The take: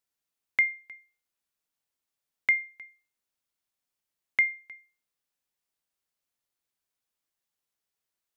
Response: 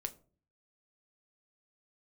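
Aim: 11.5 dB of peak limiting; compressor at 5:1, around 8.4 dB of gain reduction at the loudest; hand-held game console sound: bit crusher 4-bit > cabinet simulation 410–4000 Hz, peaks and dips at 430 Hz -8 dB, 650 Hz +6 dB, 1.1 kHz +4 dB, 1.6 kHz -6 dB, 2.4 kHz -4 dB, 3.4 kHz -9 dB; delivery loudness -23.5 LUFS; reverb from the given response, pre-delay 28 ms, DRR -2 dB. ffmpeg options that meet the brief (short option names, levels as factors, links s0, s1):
-filter_complex "[0:a]acompressor=threshold=0.0398:ratio=5,alimiter=level_in=1.12:limit=0.0631:level=0:latency=1,volume=0.891,asplit=2[s0][s1];[1:a]atrim=start_sample=2205,adelay=28[s2];[s1][s2]afir=irnorm=-1:irlink=0,volume=1.5[s3];[s0][s3]amix=inputs=2:normalize=0,acrusher=bits=3:mix=0:aa=0.000001,highpass=410,equalizer=f=430:t=q:w=4:g=-8,equalizer=f=650:t=q:w=4:g=6,equalizer=f=1100:t=q:w=4:g=4,equalizer=f=1600:t=q:w=4:g=-6,equalizer=f=2400:t=q:w=4:g=-4,equalizer=f=3400:t=q:w=4:g=-9,lowpass=f=4000:w=0.5412,lowpass=f=4000:w=1.3066,volume=8.41"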